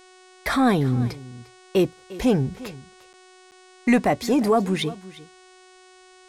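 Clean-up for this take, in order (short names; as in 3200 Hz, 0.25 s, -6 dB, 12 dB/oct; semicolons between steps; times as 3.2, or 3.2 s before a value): de-hum 370.1 Hz, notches 26; interpolate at 3.13/3.51, 8.2 ms; inverse comb 0.351 s -18 dB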